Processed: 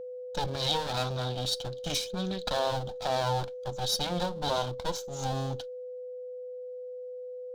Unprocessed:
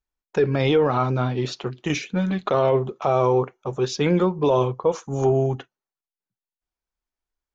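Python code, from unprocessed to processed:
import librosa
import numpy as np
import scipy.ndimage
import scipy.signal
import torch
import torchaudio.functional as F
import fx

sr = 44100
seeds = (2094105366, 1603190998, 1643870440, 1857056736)

y = fx.lower_of_two(x, sr, delay_ms=1.3)
y = fx.high_shelf_res(y, sr, hz=2900.0, db=8.5, q=3.0)
y = y + 10.0 ** (-30.0 / 20.0) * np.sin(2.0 * np.pi * 500.0 * np.arange(len(y)) / sr)
y = y * 10.0 ** (-7.5 / 20.0)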